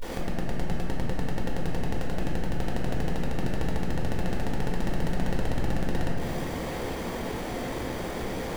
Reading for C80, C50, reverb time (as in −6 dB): 1.5 dB, −0.5 dB, 2.2 s